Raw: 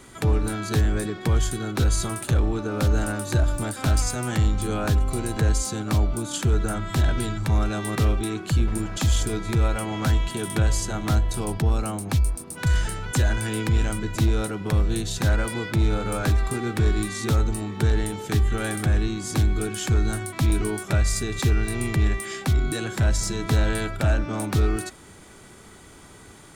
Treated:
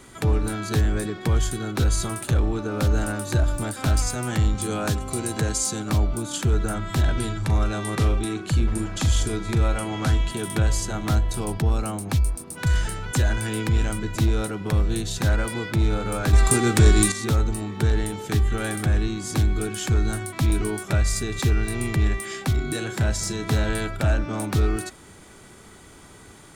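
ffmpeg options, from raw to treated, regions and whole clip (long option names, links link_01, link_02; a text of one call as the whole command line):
ffmpeg -i in.wav -filter_complex "[0:a]asettb=1/sr,asplit=3[link_01][link_02][link_03];[link_01]atrim=end=4.554[link_04];[link_02]atrim=start=4.55:end=5.9,asetpts=PTS-STARTPTS,afade=type=in:duration=0.004:curve=qsin,afade=type=out:start_time=1.346:duration=0.004:curve=qsin,highpass=100,equalizer=frequency=7800:width=0.7:gain=5.5[link_05];[link_03]atrim=start=5.896[link_06];[link_04][link_05]acrossfade=duration=0.004:curve1=hsin:curve2=qsin[link_07];[link_07][link_06]acrossfade=duration=0.004:curve1=qsin:curve2=hsin,asettb=1/sr,asplit=3[link_08][link_09][link_10];[link_08]atrim=end=7.124[link_11];[link_09]atrim=start=7.12:end=10.32,asetpts=PTS-STARTPTS,afade=type=in:duration=0.004:curve=qsin,afade=type=out:start_time=3.196:duration=0.004:curve=qsin,lowpass=frequency=12000:width=0.5412,lowpass=frequency=12000:width=1.3066,asplit=2[link_12][link_13];[link_13]adelay=40,volume=-12.5dB[link_14];[link_12][link_14]amix=inputs=2:normalize=0,atrim=end_sample=141120[link_15];[link_10]atrim=start=10.316[link_16];[link_11][link_15]acrossfade=duration=0.004:curve1=hsin:curve2=qsin[link_17];[link_17][link_16]acrossfade=duration=0.004:curve1=qsin:curve2=hsin,asettb=1/sr,asplit=3[link_18][link_19][link_20];[link_18]atrim=end=16.334[link_21];[link_19]atrim=start=16.33:end=17.12,asetpts=PTS-STARTPTS,afade=type=in:duration=0.004:curve=qsin,afade=type=out:start_time=0.786:duration=0.004:curve=qsin,equalizer=frequency=7900:width_type=o:width=1.4:gain=10,acontrast=71[link_22];[link_20]atrim=start=17.116[link_23];[link_21][link_22]acrossfade=duration=0.004:curve1=hsin:curve2=qsin[link_24];[link_24][link_23]acrossfade=duration=0.004:curve1=qsin:curve2=hsin,asettb=1/sr,asplit=3[link_25][link_26][link_27];[link_25]atrim=end=22.514[link_28];[link_26]atrim=start=22.51:end=23.69,asetpts=PTS-STARTPTS,afade=type=in:duration=0.004:curve=qsin,afade=type=out:start_time=1.176:duration=0.004:curve=qsin,highpass=64,asplit=2[link_29][link_30];[link_30]adelay=33,volume=-12dB[link_31];[link_29][link_31]amix=inputs=2:normalize=0,atrim=end_sample=52038[link_32];[link_27]atrim=start=23.686[link_33];[link_28][link_32]acrossfade=duration=0.004:curve1=hsin:curve2=qsin[link_34];[link_34][link_33]acrossfade=duration=0.004:curve1=qsin:curve2=hsin" out.wav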